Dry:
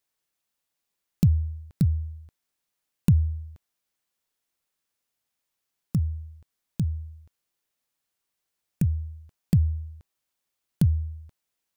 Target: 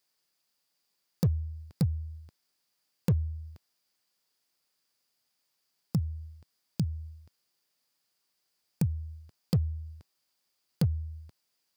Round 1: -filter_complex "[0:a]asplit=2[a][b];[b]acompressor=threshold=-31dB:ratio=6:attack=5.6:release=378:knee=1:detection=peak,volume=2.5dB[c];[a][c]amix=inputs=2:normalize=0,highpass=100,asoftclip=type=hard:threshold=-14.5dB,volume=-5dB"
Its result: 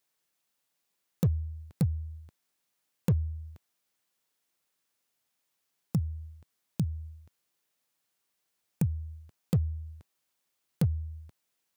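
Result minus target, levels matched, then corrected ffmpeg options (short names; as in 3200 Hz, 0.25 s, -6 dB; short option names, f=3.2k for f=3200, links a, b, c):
4000 Hz band -5.5 dB
-filter_complex "[0:a]asplit=2[a][b];[b]acompressor=threshold=-31dB:ratio=6:attack=5.6:release=378:knee=1:detection=peak,volume=2.5dB[c];[a][c]amix=inputs=2:normalize=0,highpass=100,equalizer=f=4.8k:t=o:w=0.24:g=12,asoftclip=type=hard:threshold=-14.5dB,volume=-5dB"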